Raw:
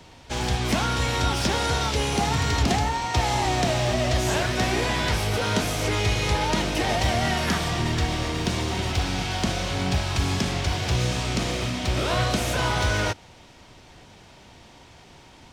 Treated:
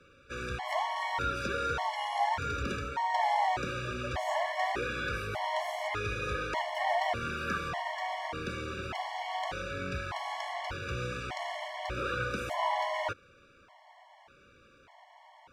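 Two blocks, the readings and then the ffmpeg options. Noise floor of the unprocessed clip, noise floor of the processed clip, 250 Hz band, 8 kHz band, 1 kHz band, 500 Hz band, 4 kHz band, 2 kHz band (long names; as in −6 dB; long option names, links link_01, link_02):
−50 dBFS, −60 dBFS, −15.5 dB, −19.0 dB, −4.0 dB, −8.0 dB, −14.0 dB, −6.5 dB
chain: -filter_complex "[0:a]acrossover=split=540 2300:gain=0.2 1 0.158[link_01][link_02][link_03];[link_01][link_02][link_03]amix=inputs=3:normalize=0,afftfilt=real='re*gt(sin(2*PI*0.84*pts/sr)*(1-2*mod(floor(b*sr/1024/570),2)),0)':imag='im*gt(sin(2*PI*0.84*pts/sr)*(1-2*mod(floor(b*sr/1024/570),2)),0)':win_size=1024:overlap=0.75"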